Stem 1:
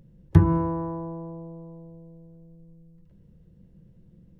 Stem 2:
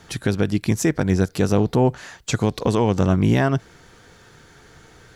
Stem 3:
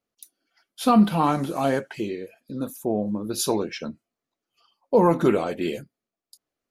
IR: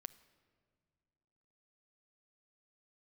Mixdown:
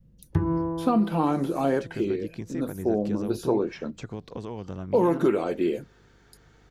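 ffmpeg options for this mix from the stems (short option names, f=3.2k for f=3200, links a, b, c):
-filter_complex "[0:a]volume=-5dB[a];[1:a]equalizer=f=11k:t=o:w=0.9:g=-12,acompressor=threshold=-27dB:ratio=2,adelay=1700,volume=-11dB[b];[2:a]aeval=exprs='val(0)+0.00141*(sin(2*PI*50*n/s)+sin(2*PI*2*50*n/s)/2+sin(2*PI*3*50*n/s)/3+sin(2*PI*4*50*n/s)/4+sin(2*PI*5*50*n/s)/5)':c=same,volume=-2.5dB[c];[a][b][c]amix=inputs=3:normalize=0,adynamicequalizer=threshold=0.0158:dfrequency=360:dqfactor=1.7:tfrequency=360:tqfactor=1.7:attack=5:release=100:ratio=0.375:range=3.5:mode=boostabove:tftype=bell,acrossover=split=870|2100[d][e][f];[d]acompressor=threshold=-19dB:ratio=4[g];[e]acompressor=threshold=-32dB:ratio=4[h];[f]acompressor=threshold=-48dB:ratio=4[i];[g][h][i]amix=inputs=3:normalize=0"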